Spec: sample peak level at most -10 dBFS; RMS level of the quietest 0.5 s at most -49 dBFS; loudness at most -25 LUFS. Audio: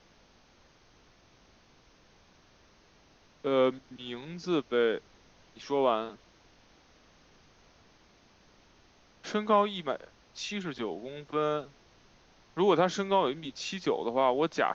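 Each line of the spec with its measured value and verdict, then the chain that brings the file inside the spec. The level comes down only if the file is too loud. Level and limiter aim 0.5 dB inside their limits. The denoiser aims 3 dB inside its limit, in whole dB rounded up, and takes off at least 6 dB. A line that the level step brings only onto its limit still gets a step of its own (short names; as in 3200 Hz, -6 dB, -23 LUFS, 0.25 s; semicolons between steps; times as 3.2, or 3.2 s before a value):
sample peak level -12.0 dBFS: OK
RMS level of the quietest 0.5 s -62 dBFS: OK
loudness -30.5 LUFS: OK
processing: none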